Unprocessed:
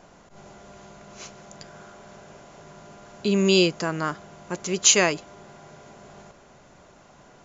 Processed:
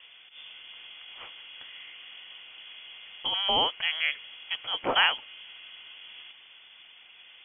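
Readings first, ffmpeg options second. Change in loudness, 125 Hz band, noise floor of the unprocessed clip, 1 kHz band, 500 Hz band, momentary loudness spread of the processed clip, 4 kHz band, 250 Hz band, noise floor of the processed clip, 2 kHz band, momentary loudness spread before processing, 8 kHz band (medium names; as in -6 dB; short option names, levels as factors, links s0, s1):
-5.0 dB, -22.5 dB, -53 dBFS, +1.0 dB, -12.5 dB, 20 LU, +1.5 dB, -20.0 dB, -53 dBFS, -0.5 dB, 18 LU, no reading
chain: -filter_complex "[0:a]acrossover=split=470[s0][s1];[s0]acompressor=threshold=0.0178:ratio=6[s2];[s2][s1]amix=inputs=2:normalize=0,lowpass=f=3000:t=q:w=0.5098,lowpass=f=3000:t=q:w=0.6013,lowpass=f=3000:t=q:w=0.9,lowpass=f=3000:t=q:w=2.563,afreqshift=-3500"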